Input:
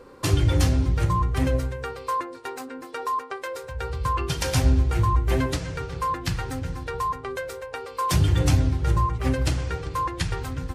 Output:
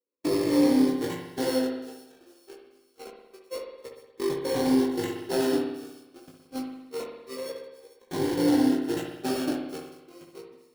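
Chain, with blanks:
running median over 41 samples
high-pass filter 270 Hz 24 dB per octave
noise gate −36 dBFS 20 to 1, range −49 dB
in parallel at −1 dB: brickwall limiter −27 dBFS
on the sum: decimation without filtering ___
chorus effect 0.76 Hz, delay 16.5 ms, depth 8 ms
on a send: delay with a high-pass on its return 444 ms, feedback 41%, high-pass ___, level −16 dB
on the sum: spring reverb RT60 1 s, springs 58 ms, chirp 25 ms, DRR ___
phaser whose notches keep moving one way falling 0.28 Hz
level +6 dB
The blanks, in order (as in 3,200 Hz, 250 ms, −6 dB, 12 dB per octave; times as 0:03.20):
9×, 4,900 Hz, 3 dB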